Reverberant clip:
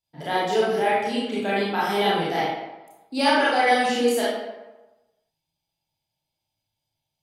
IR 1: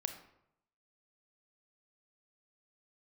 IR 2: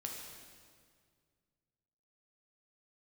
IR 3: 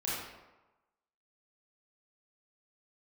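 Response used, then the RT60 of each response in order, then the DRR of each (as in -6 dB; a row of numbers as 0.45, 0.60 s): 3; 0.80, 2.0, 1.1 s; 7.0, -0.5, -8.5 dB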